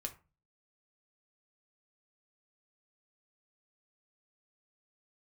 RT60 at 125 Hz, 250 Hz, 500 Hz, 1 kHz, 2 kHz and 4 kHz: 0.55, 0.45, 0.30, 0.30, 0.30, 0.20 s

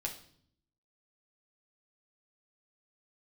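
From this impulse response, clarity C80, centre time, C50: 14.0 dB, 16 ms, 10.0 dB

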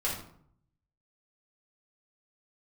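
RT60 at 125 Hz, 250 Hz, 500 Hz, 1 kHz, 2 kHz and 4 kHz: 1.0, 0.80, 0.65, 0.60, 0.45, 0.40 s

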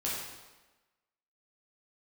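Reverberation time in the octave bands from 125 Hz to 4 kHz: 0.95, 1.1, 1.2, 1.2, 1.1, 1.0 s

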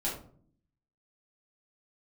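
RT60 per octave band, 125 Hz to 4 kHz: 0.90, 0.90, 0.60, 0.45, 0.35, 0.25 s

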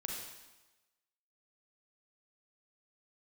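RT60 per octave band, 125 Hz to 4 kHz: 1.0, 1.1, 1.1, 1.1, 1.1, 1.1 s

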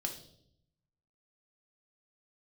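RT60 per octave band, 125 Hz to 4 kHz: 1.3, 1.0, 0.80, 0.55, 0.50, 0.70 s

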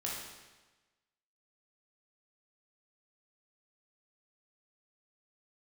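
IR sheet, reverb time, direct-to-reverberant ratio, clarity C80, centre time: 1.2 s, -4.5 dB, 3.5 dB, 72 ms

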